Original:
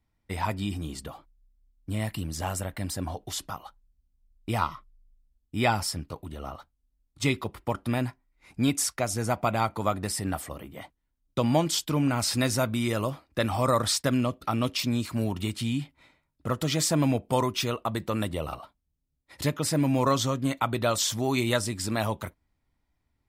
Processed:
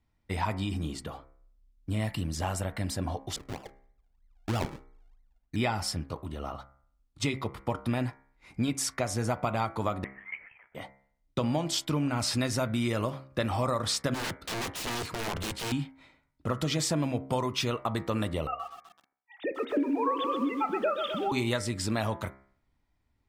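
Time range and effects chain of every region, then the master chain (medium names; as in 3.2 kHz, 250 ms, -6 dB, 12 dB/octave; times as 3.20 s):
3.36–5.56 s: median filter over 25 samples + decimation with a swept rate 42× 3.1 Hz
10.04–10.75 s: ladder high-pass 1.5 kHz, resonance 85% + frequency inversion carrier 3.7 kHz
14.14–15.72 s: integer overflow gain 28 dB + three bands expanded up and down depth 40%
18.47–21.32 s: formants replaced by sine waves + bit-crushed delay 126 ms, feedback 55%, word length 8-bit, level -8.5 dB
whole clip: treble shelf 10 kHz -12 dB; compression, threshold -26 dBFS; de-hum 66.93 Hz, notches 35; trim +1.5 dB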